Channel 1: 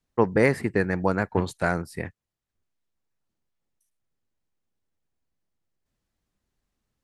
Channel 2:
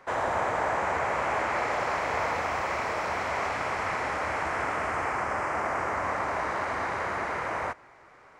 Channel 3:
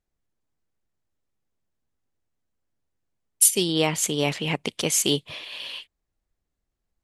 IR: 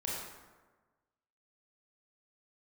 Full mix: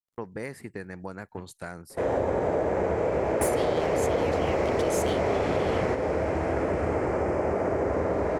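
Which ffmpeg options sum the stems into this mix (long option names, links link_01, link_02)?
-filter_complex "[0:a]agate=range=-33dB:threshold=-39dB:ratio=3:detection=peak,highshelf=frequency=6000:gain=11.5,acompressor=threshold=-33dB:ratio=2,volume=-6.5dB[link_01];[1:a]lowshelf=frequency=700:width_type=q:width=1.5:gain=13.5,adelay=1900,volume=1.5dB,asplit=2[link_02][link_03];[link_03]volume=-9dB[link_04];[2:a]asoftclip=type=tanh:threshold=-17dB,acrusher=bits=11:mix=0:aa=0.000001,volume=-5dB,asplit=2[link_05][link_06];[link_06]apad=whole_len=454134[link_07];[link_02][link_07]sidechaingate=range=-16dB:threshold=-59dB:ratio=16:detection=peak[link_08];[3:a]atrim=start_sample=2205[link_09];[link_04][link_09]afir=irnorm=-1:irlink=0[link_10];[link_01][link_08][link_05][link_10]amix=inputs=4:normalize=0,acompressor=threshold=-22dB:ratio=6"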